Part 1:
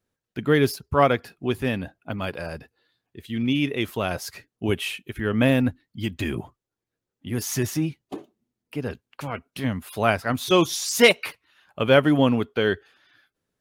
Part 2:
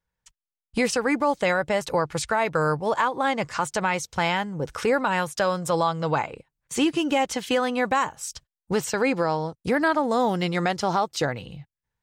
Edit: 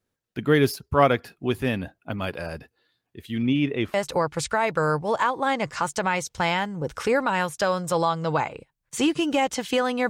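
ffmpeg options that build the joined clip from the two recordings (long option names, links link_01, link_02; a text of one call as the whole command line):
ffmpeg -i cue0.wav -i cue1.wav -filter_complex "[0:a]asettb=1/sr,asplit=3[link_01][link_02][link_03];[link_01]atrim=end=3.454[link_04];[link_02]atrim=start=3.45:end=3.94,asetpts=PTS-STARTPTS,afade=type=in:duration=0.004:curve=qsin,afade=type=out:start_time=0.486:duration=0.004:curve=qsin,aemphasis=mode=reproduction:type=75fm[link_05];[link_03]atrim=start=3.936[link_06];[link_04][link_05]acrossfade=duration=0.004:curve1=hsin:curve2=qsin[link_07];[link_07][link_06]acrossfade=duration=0.004:curve1=qsin:curve2=hsin,apad=whole_dur=10.09,atrim=end=10.09,atrim=end=3.942[link_08];[1:a]atrim=start=1.718:end=7.87[link_09];[link_08][link_09]acrossfade=duration=0.004:curve1=hsin:curve2=hsin" out.wav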